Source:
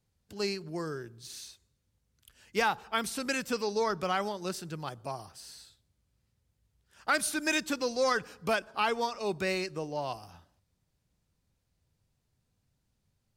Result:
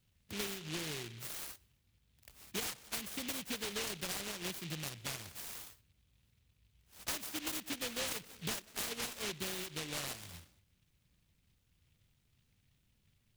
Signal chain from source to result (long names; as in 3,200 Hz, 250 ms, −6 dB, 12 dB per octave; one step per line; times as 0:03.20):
parametric band 4,700 Hz +4 dB 0.79 octaves
downward compressor 5 to 1, threshold −41 dBFS, peak gain reduction 16.5 dB
high-shelf EQ 8,800 Hz −6.5 dB
short delay modulated by noise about 2,800 Hz, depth 0.4 ms
level +3 dB